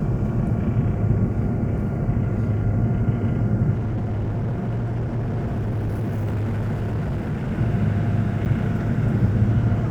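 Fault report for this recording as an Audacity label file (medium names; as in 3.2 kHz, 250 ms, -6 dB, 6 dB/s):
3.730000	7.530000	clipped -21.5 dBFS
8.450000	8.460000	dropout 8.9 ms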